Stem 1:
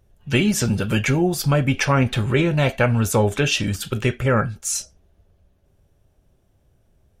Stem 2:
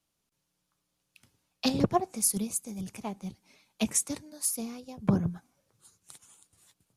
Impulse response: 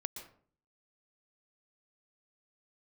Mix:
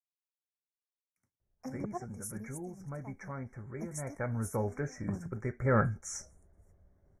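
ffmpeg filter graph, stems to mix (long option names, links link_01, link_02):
-filter_complex "[0:a]acrossover=split=8600[link_01][link_02];[link_02]acompressor=threshold=-38dB:ratio=4:attack=1:release=60[link_03];[link_01][link_03]amix=inputs=2:normalize=0,aemphasis=mode=reproduction:type=50kf,adelay=1400,volume=-5dB,afade=type=in:start_time=3.94:duration=0.46:silence=0.375837,afade=type=in:start_time=5.54:duration=0.33:silence=0.316228[link_04];[1:a]agate=range=-33dB:threshold=-58dB:ratio=3:detection=peak,volume=-14dB[link_05];[link_04][link_05]amix=inputs=2:normalize=0,asuperstop=centerf=3500:order=20:qfactor=1.1,highshelf=frequency=7100:gain=-4.5"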